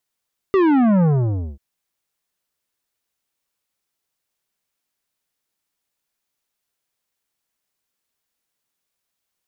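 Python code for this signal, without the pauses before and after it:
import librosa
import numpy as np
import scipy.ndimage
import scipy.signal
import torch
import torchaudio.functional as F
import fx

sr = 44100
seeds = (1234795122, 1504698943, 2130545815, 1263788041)

y = fx.sub_drop(sr, level_db=-13.5, start_hz=400.0, length_s=1.04, drive_db=12.0, fade_s=0.55, end_hz=65.0)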